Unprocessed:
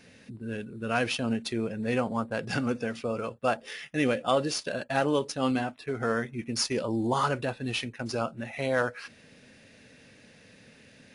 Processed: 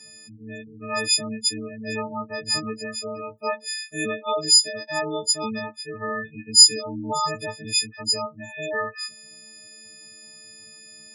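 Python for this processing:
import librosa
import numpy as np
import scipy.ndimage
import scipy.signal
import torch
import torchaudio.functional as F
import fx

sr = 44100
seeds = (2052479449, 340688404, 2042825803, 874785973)

y = fx.freq_snap(x, sr, grid_st=6)
y = fx.spec_gate(y, sr, threshold_db=-15, keep='strong')
y = fx.high_shelf_res(y, sr, hz=4400.0, db=6.0, q=3.0)
y = y * librosa.db_to_amplitude(-3.0)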